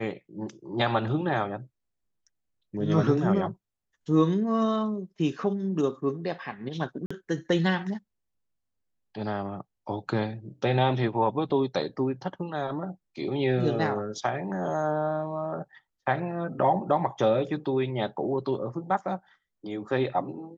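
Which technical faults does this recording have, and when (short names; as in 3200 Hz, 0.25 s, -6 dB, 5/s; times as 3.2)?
7.06–7.11 gap 45 ms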